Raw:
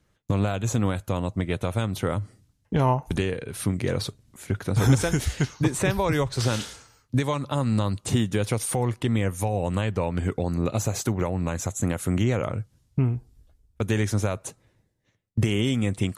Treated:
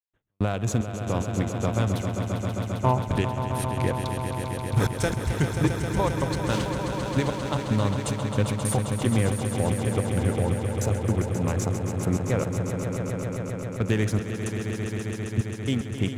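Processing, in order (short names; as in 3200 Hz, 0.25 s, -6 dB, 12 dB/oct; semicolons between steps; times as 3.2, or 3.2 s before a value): Wiener smoothing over 9 samples; step gate ".x.xxx..x" 111 bpm -60 dB; on a send: swelling echo 0.133 s, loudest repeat 5, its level -9 dB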